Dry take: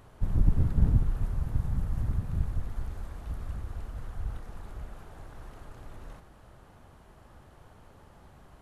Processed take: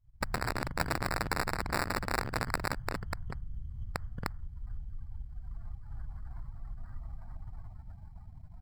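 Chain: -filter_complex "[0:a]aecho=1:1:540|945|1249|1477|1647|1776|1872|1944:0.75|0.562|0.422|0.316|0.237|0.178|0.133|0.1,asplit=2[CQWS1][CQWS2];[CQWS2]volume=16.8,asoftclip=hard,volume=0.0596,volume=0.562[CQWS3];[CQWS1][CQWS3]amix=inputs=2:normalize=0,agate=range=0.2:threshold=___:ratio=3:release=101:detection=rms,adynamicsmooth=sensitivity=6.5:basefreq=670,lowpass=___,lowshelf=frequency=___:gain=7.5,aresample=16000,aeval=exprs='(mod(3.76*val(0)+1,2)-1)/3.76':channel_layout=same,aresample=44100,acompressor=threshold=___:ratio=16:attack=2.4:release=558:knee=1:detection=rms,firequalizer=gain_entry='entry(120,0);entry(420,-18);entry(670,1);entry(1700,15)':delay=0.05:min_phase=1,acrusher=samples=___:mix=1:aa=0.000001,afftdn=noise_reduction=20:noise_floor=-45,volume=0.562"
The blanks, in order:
0.00631, 1700, 150, 0.0398, 14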